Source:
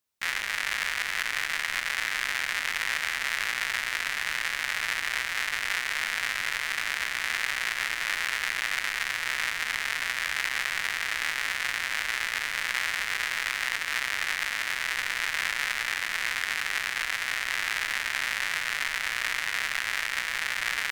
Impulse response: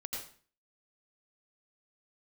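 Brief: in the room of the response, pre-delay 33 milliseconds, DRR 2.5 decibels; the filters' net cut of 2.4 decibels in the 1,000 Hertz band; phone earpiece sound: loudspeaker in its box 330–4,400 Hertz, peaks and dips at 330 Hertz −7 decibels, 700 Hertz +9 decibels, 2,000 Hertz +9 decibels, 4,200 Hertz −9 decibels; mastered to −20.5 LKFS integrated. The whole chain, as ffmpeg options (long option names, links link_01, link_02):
-filter_complex "[0:a]equalizer=frequency=1000:width_type=o:gain=-6,asplit=2[link_01][link_02];[1:a]atrim=start_sample=2205,adelay=33[link_03];[link_02][link_03]afir=irnorm=-1:irlink=0,volume=-2.5dB[link_04];[link_01][link_04]amix=inputs=2:normalize=0,highpass=330,equalizer=frequency=330:width_type=q:width=4:gain=-7,equalizer=frequency=700:width_type=q:width=4:gain=9,equalizer=frequency=2000:width_type=q:width=4:gain=9,equalizer=frequency=4200:width_type=q:width=4:gain=-9,lowpass=frequency=4400:width=0.5412,lowpass=frequency=4400:width=1.3066,volume=1.5dB"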